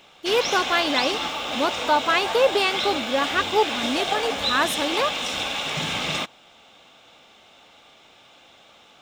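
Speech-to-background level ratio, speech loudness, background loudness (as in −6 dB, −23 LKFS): 2.0 dB, −23.5 LKFS, −25.5 LKFS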